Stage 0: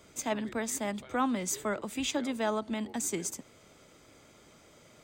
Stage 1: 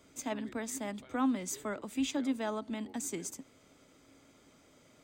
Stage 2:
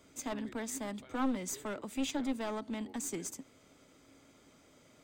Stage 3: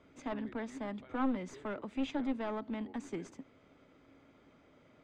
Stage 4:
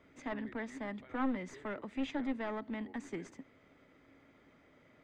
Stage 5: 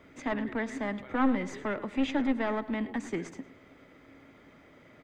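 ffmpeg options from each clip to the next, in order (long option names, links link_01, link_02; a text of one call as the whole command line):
ffmpeg -i in.wav -af "equalizer=frequency=270:width=6.6:gain=9.5,volume=-5.5dB" out.wav
ffmpeg -i in.wav -af "aeval=exprs='clip(val(0),-1,0.0178)':channel_layout=same" out.wav
ffmpeg -i in.wav -af "lowpass=2500" out.wav
ffmpeg -i in.wav -af "equalizer=frequency=1900:width_type=o:width=0.36:gain=8,volume=-1.5dB" out.wav
ffmpeg -i in.wav -filter_complex "[0:a]asplit=2[link_01][link_02];[link_02]adelay=106,lowpass=frequency=4400:poles=1,volume=-15.5dB,asplit=2[link_03][link_04];[link_04]adelay=106,lowpass=frequency=4400:poles=1,volume=0.46,asplit=2[link_05][link_06];[link_06]adelay=106,lowpass=frequency=4400:poles=1,volume=0.46,asplit=2[link_07][link_08];[link_08]adelay=106,lowpass=frequency=4400:poles=1,volume=0.46[link_09];[link_01][link_03][link_05][link_07][link_09]amix=inputs=5:normalize=0,volume=8dB" out.wav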